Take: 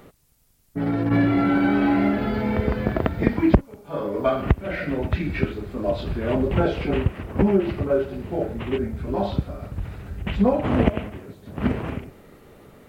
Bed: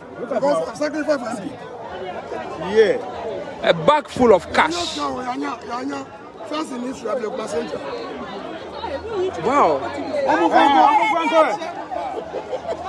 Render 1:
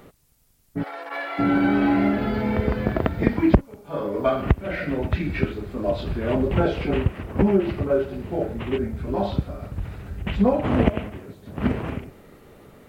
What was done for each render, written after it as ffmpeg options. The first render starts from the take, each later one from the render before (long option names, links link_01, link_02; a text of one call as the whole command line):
ffmpeg -i in.wav -filter_complex "[0:a]asplit=3[link_01][link_02][link_03];[link_01]afade=type=out:start_time=0.82:duration=0.02[link_04];[link_02]highpass=frequency=630:width=0.5412,highpass=frequency=630:width=1.3066,afade=type=in:start_time=0.82:duration=0.02,afade=type=out:start_time=1.38:duration=0.02[link_05];[link_03]afade=type=in:start_time=1.38:duration=0.02[link_06];[link_04][link_05][link_06]amix=inputs=3:normalize=0" out.wav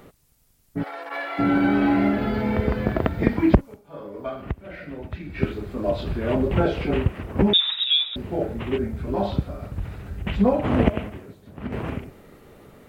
ffmpeg -i in.wav -filter_complex "[0:a]asettb=1/sr,asplit=3[link_01][link_02][link_03];[link_01]atrim=end=7.534[link_04];[link_02]atrim=start=7.53:end=8.16,asetpts=PTS-STARTPTS,afade=type=in:duration=0.004:curve=qsin,afade=type=out:start_time=0.626:duration=0.004:curve=qsin,lowpass=frequency=3300:width_type=q:width=0.5098,lowpass=frequency=3300:width_type=q:width=0.6013,lowpass=frequency=3300:width_type=q:width=0.9,lowpass=frequency=3300:width_type=q:width=2.563,afreqshift=-3900[link_05];[link_03]atrim=start=8.156[link_06];[link_04][link_05]acrossfade=duration=0.004:curve1=hsin:curve2=qsin[link_07];[link_07][link_06]acrossfade=duration=0.004:curve1=qsin:curve2=hsin,asplit=4[link_08][link_09][link_10][link_11];[link_08]atrim=end=4.17,asetpts=PTS-STARTPTS,afade=type=out:start_time=3.73:duration=0.44:curve=exp:silence=0.316228[link_12];[link_09]atrim=start=4.17:end=4.99,asetpts=PTS-STARTPTS,volume=-10dB[link_13];[link_10]atrim=start=4.99:end=11.72,asetpts=PTS-STARTPTS,afade=type=in:duration=0.44:curve=exp:silence=0.316228,afade=type=out:start_time=6.08:duration=0.65:silence=0.251189[link_14];[link_11]atrim=start=11.72,asetpts=PTS-STARTPTS,afade=type=in:duration=0.004:curve=hsin:silence=0.251189[link_15];[link_12][link_13][link_14][link_15]concat=n=4:v=0:a=1" out.wav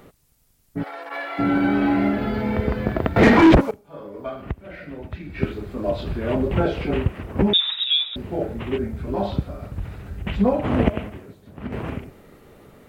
ffmpeg -i in.wav -filter_complex "[0:a]asettb=1/sr,asplit=3[link_01][link_02][link_03];[link_01]atrim=end=3.164[link_04];[link_02]atrim=start=3.16:end=3.71,asetpts=PTS-STARTPTS,afade=type=in:duration=0.004:curve=qsin,afade=type=out:start_time=0.546:duration=0.004:curve=qsin,asplit=2[link_05][link_06];[link_06]highpass=frequency=720:poles=1,volume=35dB,asoftclip=type=tanh:threshold=-3dB[link_07];[link_05][link_07]amix=inputs=2:normalize=0,lowpass=frequency=1200:poles=1,volume=-6dB[link_08];[link_03]atrim=start=3.706[link_09];[link_04][link_08]acrossfade=duration=0.004:curve1=hsin:curve2=qsin[link_10];[link_10][link_09]acrossfade=duration=0.004:curve1=qsin:curve2=hsin" out.wav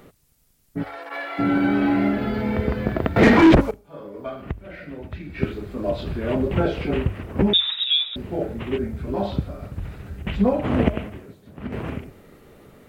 ffmpeg -i in.wav -af "equalizer=frequency=880:width=1.5:gain=-2,bandreject=frequency=50:width_type=h:width=6,bandreject=frequency=100:width_type=h:width=6" out.wav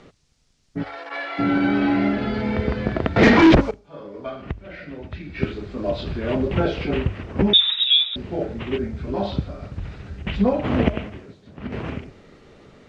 ffmpeg -i in.wav -af "lowpass=frequency=5900:width=0.5412,lowpass=frequency=5900:width=1.3066,highshelf=frequency=3800:gain=8.5" out.wav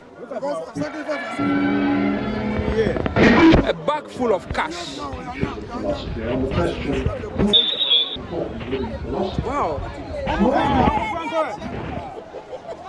ffmpeg -i in.wav -i bed.wav -filter_complex "[1:a]volume=-7dB[link_01];[0:a][link_01]amix=inputs=2:normalize=0" out.wav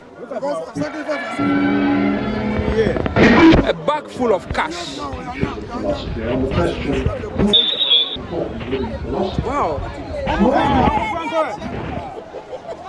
ffmpeg -i in.wav -af "volume=3dB,alimiter=limit=-3dB:level=0:latency=1" out.wav